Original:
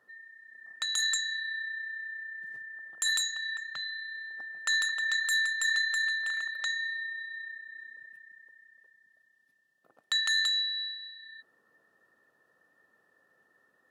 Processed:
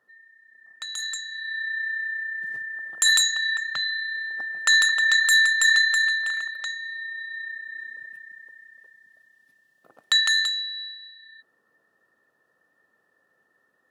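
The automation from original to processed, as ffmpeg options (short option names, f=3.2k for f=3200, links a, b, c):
-af "volume=20.5dB,afade=t=in:st=1.31:d=0.56:silence=0.237137,afade=t=out:st=5.69:d=1.11:silence=0.266073,afade=t=in:st=6.8:d=0.95:silence=0.298538,afade=t=out:st=10.16:d=0.4:silence=0.354813"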